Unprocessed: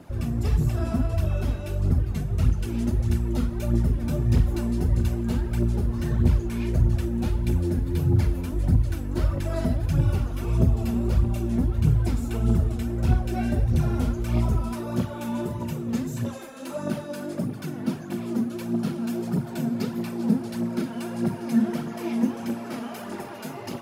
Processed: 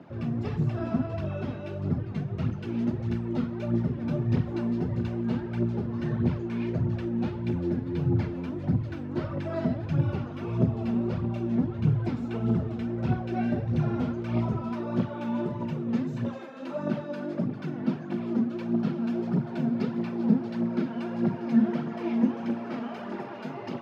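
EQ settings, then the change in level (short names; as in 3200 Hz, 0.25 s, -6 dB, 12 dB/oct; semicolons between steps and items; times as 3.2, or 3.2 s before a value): HPF 120 Hz 24 dB/oct; air absorption 240 m; 0.0 dB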